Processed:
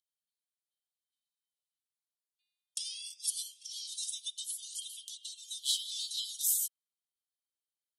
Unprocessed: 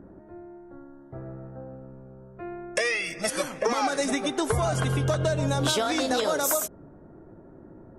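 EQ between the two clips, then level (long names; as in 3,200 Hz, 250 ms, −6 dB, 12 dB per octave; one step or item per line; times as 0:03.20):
Chebyshev high-pass with heavy ripple 3,000 Hz, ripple 6 dB
0.0 dB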